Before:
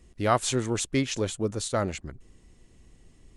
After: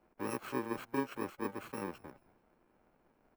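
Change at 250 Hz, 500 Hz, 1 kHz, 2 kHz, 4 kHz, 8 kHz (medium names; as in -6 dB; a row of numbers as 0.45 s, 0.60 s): -9.5 dB, -12.0 dB, -11.0 dB, -9.5 dB, -20.5 dB, -22.5 dB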